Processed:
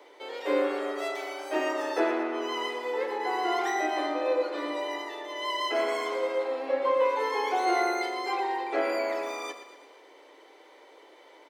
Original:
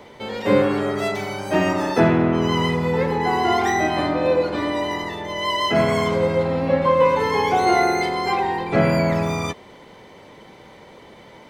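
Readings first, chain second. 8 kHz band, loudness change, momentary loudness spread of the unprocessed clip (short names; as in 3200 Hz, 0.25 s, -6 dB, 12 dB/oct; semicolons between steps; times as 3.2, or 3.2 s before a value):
-8.0 dB, -9.0 dB, 8 LU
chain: steep high-pass 290 Hz 72 dB/oct; on a send: feedback echo 0.117 s, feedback 54%, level -11 dB; on the sum: gain -8.5 dB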